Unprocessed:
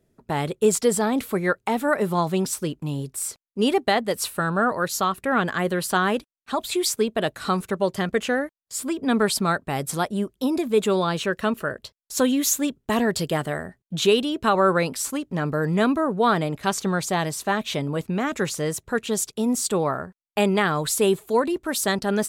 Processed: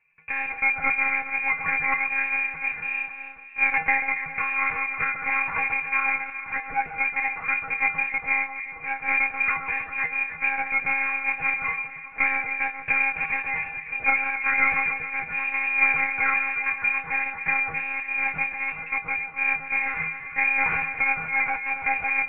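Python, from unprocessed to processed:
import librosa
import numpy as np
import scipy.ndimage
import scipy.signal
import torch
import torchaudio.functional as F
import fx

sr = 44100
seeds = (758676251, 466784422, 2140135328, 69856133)

y = fx.halfwave_hold(x, sr)
y = fx.freq_invert(y, sr, carrier_hz=2600)
y = fx.echo_alternate(y, sr, ms=136, hz=1500.0, feedback_pct=69, wet_db=-6.5)
y = fx.lpc_monotone(y, sr, seeds[0], pitch_hz=270.0, order=8)
y = fx.comb_fb(y, sr, f0_hz=160.0, decay_s=0.28, harmonics='odd', damping=0.0, mix_pct=90)
y = F.gain(torch.from_numpy(y), 7.5).numpy()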